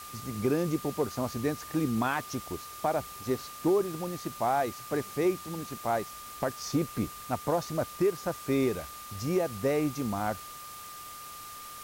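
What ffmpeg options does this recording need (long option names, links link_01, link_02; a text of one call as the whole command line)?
ffmpeg -i in.wav -af "bandreject=frequency=1200:width=30,afftdn=noise_reduction=30:noise_floor=-44" out.wav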